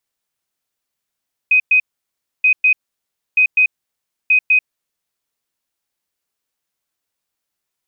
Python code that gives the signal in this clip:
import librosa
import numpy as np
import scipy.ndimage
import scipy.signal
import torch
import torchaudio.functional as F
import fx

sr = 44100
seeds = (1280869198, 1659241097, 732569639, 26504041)

y = fx.beep_pattern(sr, wave='sine', hz=2510.0, on_s=0.09, off_s=0.11, beeps=2, pause_s=0.64, groups=4, level_db=-8.5)